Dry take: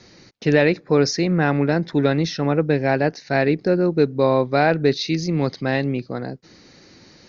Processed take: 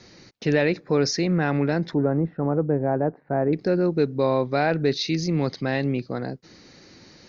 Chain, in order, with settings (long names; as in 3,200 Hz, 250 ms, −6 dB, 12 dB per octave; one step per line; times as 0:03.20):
0:01.94–0:03.53: low-pass filter 1,200 Hz 24 dB per octave
in parallel at +1 dB: brickwall limiter −15.5 dBFS, peak gain reduction 11 dB
on the sum: level −7.5 dB